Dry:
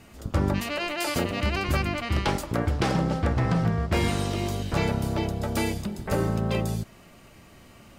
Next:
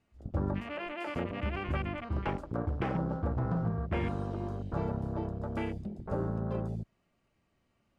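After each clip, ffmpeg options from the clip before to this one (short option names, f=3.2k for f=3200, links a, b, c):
-af "afwtdn=0.0282,lowpass=11k,highshelf=f=5.4k:g=-8,volume=-7.5dB"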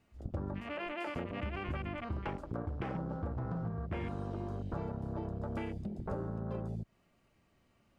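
-af "acompressor=threshold=-39dB:ratio=6,volume=4dB"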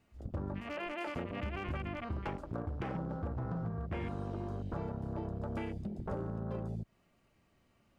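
-af "volume=30dB,asoftclip=hard,volume=-30dB"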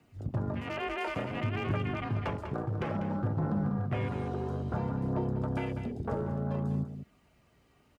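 -af "aphaser=in_gain=1:out_gain=1:delay=2.8:decay=0.28:speed=0.58:type=triangular,afreqshift=33,aecho=1:1:196:0.335,volume=4.5dB"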